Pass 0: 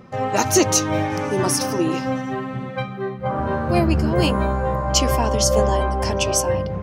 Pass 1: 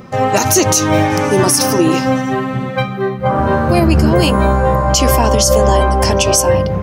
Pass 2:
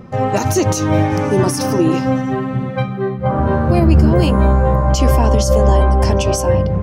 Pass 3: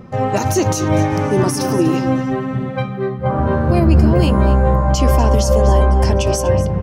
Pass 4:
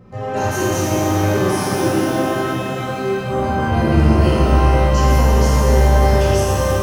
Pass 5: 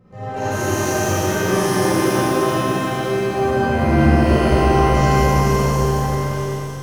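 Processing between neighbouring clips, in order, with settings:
high shelf 6700 Hz +8 dB; maximiser +10 dB; gain -1 dB
tilt -2 dB/oct; gain -5 dB
echo 0.244 s -13.5 dB; gain -1 dB
shimmer reverb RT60 2.9 s, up +12 st, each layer -8 dB, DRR -9.5 dB; gain -11.5 dB
ending faded out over 1.99 s; reverb RT60 3.4 s, pre-delay 38 ms, DRR -9.5 dB; gain -8.5 dB

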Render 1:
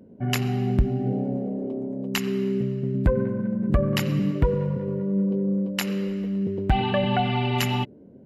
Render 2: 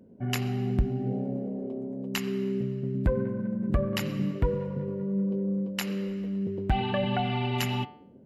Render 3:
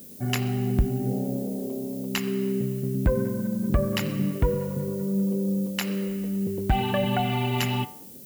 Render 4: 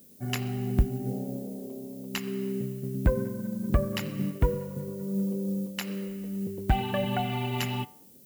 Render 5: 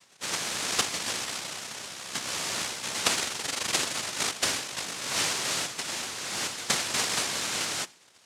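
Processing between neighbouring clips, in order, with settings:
de-hum 147.6 Hz, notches 34; gain -4.5 dB
added noise violet -49 dBFS; gain +3 dB
upward expander 1.5:1, over -35 dBFS
noise vocoder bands 1

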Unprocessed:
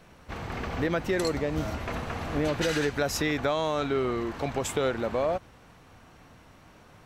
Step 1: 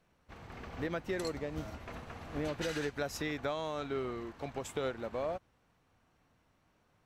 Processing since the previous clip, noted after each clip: upward expander 1.5:1, over -44 dBFS; gain -8 dB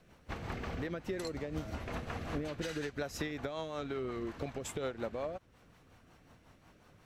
compressor 6:1, threshold -46 dBFS, peak gain reduction 14 dB; rotary speaker horn 5.5 Hz; gain +12 dB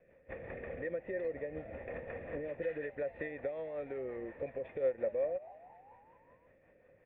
vocal tract filter e; frequency-shifting echo 0.218 s, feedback 61%, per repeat +90 Hz, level -20 dB; gain +9.5 dB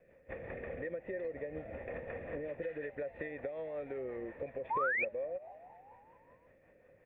compressor 5:1, threshold -37 dBFS, peak gain reduction 9.5 dB; painted sound rise, 4.7–5.05, 840–2600 Hz -34 dBFS; gain +1 dB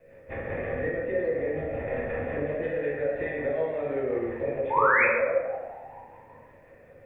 plate-style reverb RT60 1.2 s, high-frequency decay 0.55×, DRR -6 dB; gain +5 dB

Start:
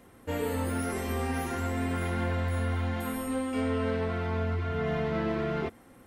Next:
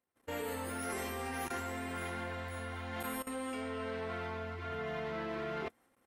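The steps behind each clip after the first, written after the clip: gate -52 dBFS, range -28 dB; level quantiser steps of 17 dB; low shelf 330 Hz -11.5 dB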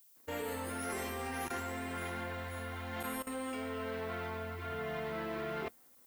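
added noise violet -63 dBFS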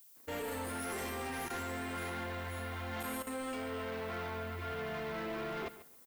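soft clip -38.5 dBFS, distortion -12 dB; feedback echo 0.14 s, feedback 18%, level -15 dB; gain +3.5 dB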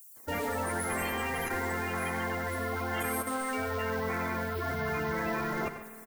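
bin magnitudes rounded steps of 30 dB; outdoor echo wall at 16 m, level -11 dB; spring tank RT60 2.6 s, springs 50 ms, chirp 60 ms, DRR 12 dB; gain +7.5 dB

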